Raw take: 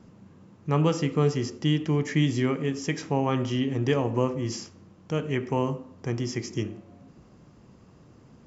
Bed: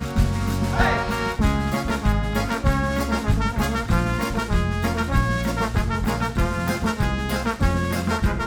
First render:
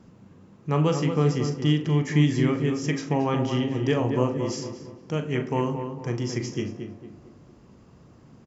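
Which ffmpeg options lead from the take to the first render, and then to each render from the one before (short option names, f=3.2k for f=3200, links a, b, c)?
-filter_complex "[0:a]asplit=2[a][b];[b]adelay=40,volume=-10dB[c];[a][c]amix=inputs=2:normalize=0,asplit=2[d][e];[e]adelay=227,lowpass=f=1.9k:p=1,volume=-7dB,asplit=2[f][g];[g]adelay=227,lowpass=f=1.9k:p=1,volume=0.42,asplit=2[h][i];[i]adelay=227,lowpass=f=1.9k:p=1,volume=0.42,asplit=2[j][k];[k]adelay=227,lowpass=f=1.9k:p=1,volume=0.42,asplit=2[l][m];[m]adelay=227,lowpass=f=1.9k:p=1,volume=0.42[n];[f][h][j][l][n]amix=inputs=5:normalize=0[o];[d][o]amix=inputs=2:normalize=0"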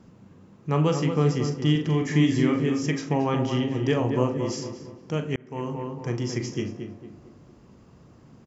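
-filter_complex "[0:a]asettb=1/sr,asplit=3[a][b][c];[a]atrim=end=1.714[d];[b]atrim=start=1.71:end=2.86,asetpts=PTS-STARTPTS,afade=t=in:d=0.004:c=qsin,afade=t=out:st=1.146:d=0.004:c=qsin,asplit=2[e][f];[f]adelay=44,volume=-7.5dB[g];[e][g]amix=inputs=2:normalize=0,atrim=end_sample=50715[h];[c]atrim=start=2.856[i];[d][h]acrossfade=d=0.004:c1=hsin:c2=qsin[j];[j][i]acrossfade=d=0.004:c1=qsin:c2=hsin,asplit=2[k][l];[k]atrim=end=5.36,asetpts=PTS-STARTPTS,afade=t=out:st=5.356:d=0.004:c=hsin[m];[l]atrim=start=5.36,asetpts=PTS-STARTPTS,afade=t=in:d=0.52[n];[m][n]concat=n=2:v=0:a=1"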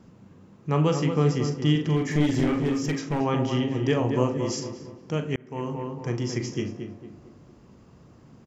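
-filter_complex "[0:a]asettb=1/sr,asplit=3[a][b][c];[a]atrim=end=1.964[d];[b]atrim=start=1.96:end=3.21,asetpts=PTS-STARTPTS,afade=t=in:d=0.004:c=qsin,afade=t=out:st=1.246:d=0.004:c=qsin,aeval=exprs='clip(val(0),-1,0.075)':c=same[e];[c]atrim=start=3.206[f];[d][e]acrossfade=d=0.004:c1=hsin:c2=qsin[g];[g][f]acrossfade=d=0.004:c1=qsin:c2=hsin,asettb=1/sr,asplit=3[h][i][j];[h]atrim=end=4.094[k];[i]atrim=start=4.09:end=4.6,asetpts=PTS-STARTPTS,afade=t=in:d=0.004:c=qsin,afade=t=out:st=0.506:d=0.004:c=qsin,highshelf=f=6k:g=6.5[l];[j]atrim=start=4.596[m];[k][l]acrossfade=d=0.004:c1=hsin:c2=qsin[n];[n][m]acrossfade=d=0.004:c1=qsin:c2=hsin"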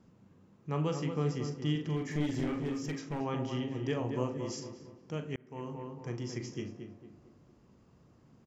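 -af "volume=-10dB"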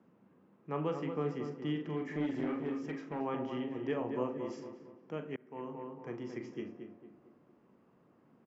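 -filter_complex "[0:a]acrossover=split=180 2700:gain=0.0891 1 0.112[a][b][c];[a][b][c]amix=inputs=3:normalize=0"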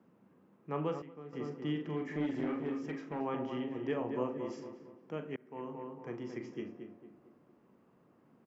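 -filter_complex "[0:a]asplit=3[a][b][c];[a]atrim=end=1.02,asetpts=PTS-STARTPTS,afade=t=out:st=0.76:d=0.26:c=log:silence=0.199526[d];[b]atrim=start=1.02:end=1.33,asetpts=PTS-STARTPTS,volume=-14dB[e];[c]atrim=start=1.33,asetpts=PTS-STARTPTS,afade=t=in:d=0.26:c=log:silence=0.199526[f];[d][e][f]concat=n=3:v=0:a=1"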